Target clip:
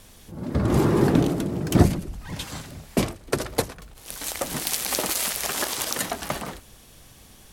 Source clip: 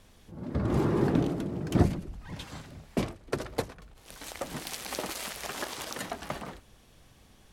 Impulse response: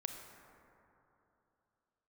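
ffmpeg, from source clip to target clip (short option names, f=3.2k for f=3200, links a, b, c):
-af "crystalizer=i=1.5:c=0,volume=6.5dB"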